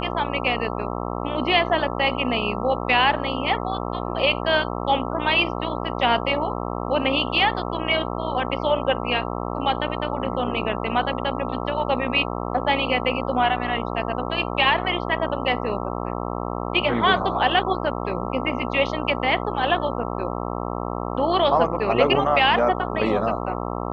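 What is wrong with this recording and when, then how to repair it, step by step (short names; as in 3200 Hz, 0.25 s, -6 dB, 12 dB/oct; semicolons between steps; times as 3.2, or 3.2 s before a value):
buzz 60 Hz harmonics 22 -28 dBFS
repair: de-hum 60 Hz, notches 22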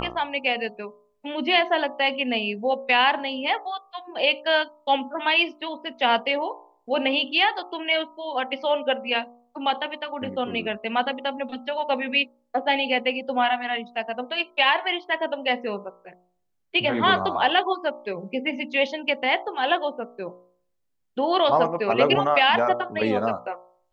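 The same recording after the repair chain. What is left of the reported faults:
none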